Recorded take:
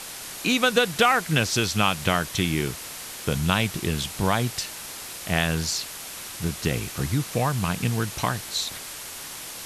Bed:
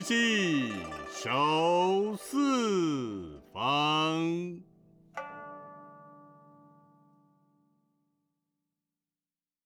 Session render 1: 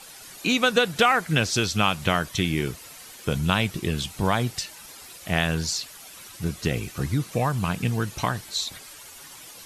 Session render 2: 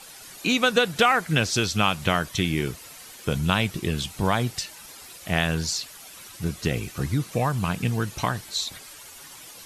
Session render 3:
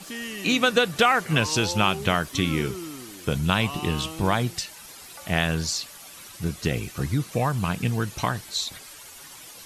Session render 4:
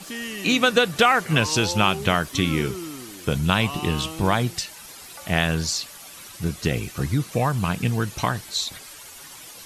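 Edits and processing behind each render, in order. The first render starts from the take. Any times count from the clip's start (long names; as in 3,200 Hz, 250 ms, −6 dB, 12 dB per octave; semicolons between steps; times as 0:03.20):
broadband denoise 11 dB, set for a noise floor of −38 dBFS
no processing that can be heard
mix in bed −8 dB
level +2 dB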